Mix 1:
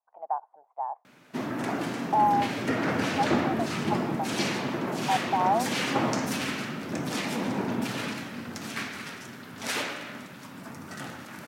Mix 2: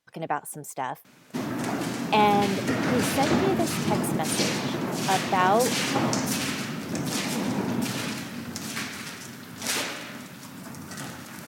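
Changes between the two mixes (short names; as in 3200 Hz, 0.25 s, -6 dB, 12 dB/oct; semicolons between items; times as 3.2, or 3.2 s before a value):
speech: remove Butterworth band-pass 820 Hz, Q 2.5; master: add tone controls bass +4 dB, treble +8 dB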